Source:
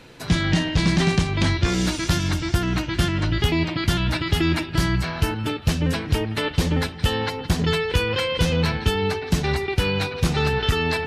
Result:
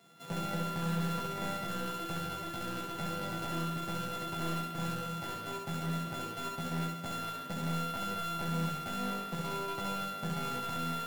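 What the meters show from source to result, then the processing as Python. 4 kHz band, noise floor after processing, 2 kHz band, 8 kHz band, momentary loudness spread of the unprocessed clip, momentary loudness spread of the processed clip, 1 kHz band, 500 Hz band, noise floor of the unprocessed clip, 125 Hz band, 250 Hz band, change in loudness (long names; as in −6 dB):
−16.5 dB, −42 dBFS, −16.5 dB, −13.0 dB, 3 LU, 4 LU, −6.5 dB, −16.0 dB, −34 dBFS, −16.5 dB, −14.5 dB, −14.0 dB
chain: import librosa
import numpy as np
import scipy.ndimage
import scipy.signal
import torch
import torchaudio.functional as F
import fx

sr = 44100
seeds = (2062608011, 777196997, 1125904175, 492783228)

y = np.r_[np.sort(x[:len(x) // 64 * 64].reshape(-1, 64), axis=1).ravel(), x[len(x) // 64 * 64:]]
y = scipy.signal.sosfilt(scipy.signal.butter(4, 120.0, 'highpass', fs=sr, output='sos'), y)
y = fx.echo_feedback(y, sr, ms=66, feedback_pct=54, wet_db=-5)
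y = np.clip(y, -10.0 ** (-19.0 / 20.0), 10.0 ** (-19.0 / 20.0))
y = fx.resonator_bank(y, sr, root=52, chord='minor', decay_s=0.21)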